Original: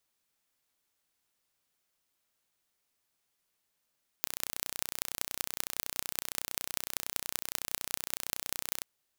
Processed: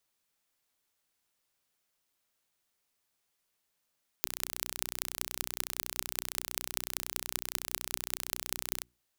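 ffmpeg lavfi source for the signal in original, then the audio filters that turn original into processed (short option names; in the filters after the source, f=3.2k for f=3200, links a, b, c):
-f lavfi -i "aevalsrc='0.75*eq(mod(n,1432),0)*(0.5+0.5*eq(mod(n,8592),0))':d=4.61:s=44100"
-af "bandreject=f=60:t=h:w=6,bandreject=f=120:t=h:w=6,bandreject=f=180:t=h:w=6,bandreject=f=240:t=h:w=6,bandreject=f=300:t=h:w=6,bandreject=f=360:t=h:w=6"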